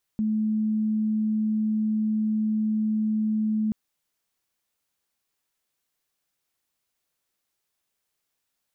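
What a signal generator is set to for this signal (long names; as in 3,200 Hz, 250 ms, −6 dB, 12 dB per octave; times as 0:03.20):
tone sine 216 Hz −21.5 dBFS 3.53 s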